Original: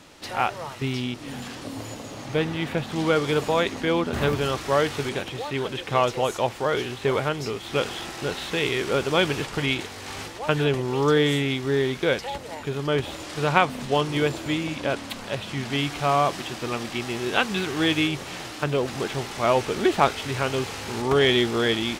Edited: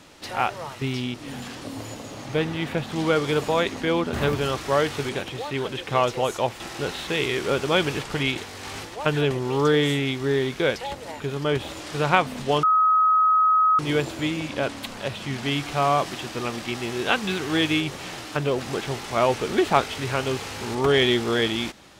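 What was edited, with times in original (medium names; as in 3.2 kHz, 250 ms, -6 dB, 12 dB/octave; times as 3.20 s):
6.60–8.03 s: delete
14.06 s: add tone 1.27 kHz -15 dBFS 1.16 s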